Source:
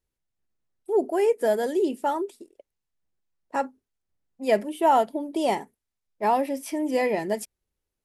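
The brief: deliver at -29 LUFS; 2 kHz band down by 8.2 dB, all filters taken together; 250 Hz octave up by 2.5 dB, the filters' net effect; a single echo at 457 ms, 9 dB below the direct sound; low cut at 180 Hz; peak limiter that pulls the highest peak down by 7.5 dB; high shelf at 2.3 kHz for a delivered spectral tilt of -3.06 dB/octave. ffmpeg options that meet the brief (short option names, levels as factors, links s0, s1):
-af "highpass=180,equalizer=f=250:t=o:g=4.5,equalizer=f=2000:t=o:g=-5.5,highshelf=f=2300:g=-9,alimiter=limit=0.141:level=0:latency=1,aecho=1:1:457:0.355,volume=0.841"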